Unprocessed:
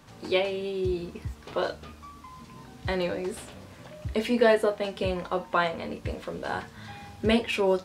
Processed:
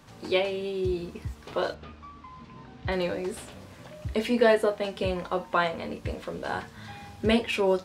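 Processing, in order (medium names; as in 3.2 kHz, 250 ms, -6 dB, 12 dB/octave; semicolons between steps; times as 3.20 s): 1.74–2.92 s: low-pass 3.7 kHz 12 dB/octave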